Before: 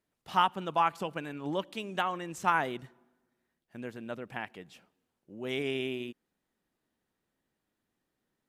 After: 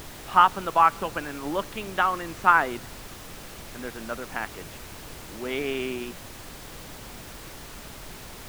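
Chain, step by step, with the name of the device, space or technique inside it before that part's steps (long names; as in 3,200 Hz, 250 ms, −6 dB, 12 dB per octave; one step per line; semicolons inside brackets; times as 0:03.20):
horn gramophone (band-pass filter 190–3,200 Hz; parametric band 1,300 Hz +7.5 dB; tape wow and flutter 25 cents; pink noise bed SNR 13 dB)
level +4 dB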